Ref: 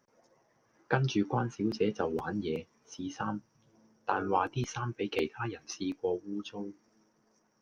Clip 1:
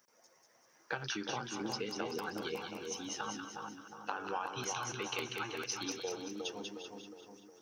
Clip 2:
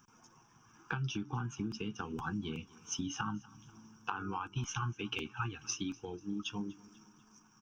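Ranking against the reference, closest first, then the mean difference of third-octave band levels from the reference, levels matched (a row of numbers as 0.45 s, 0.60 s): 2, 1; 6.0 dB, 13.0 dB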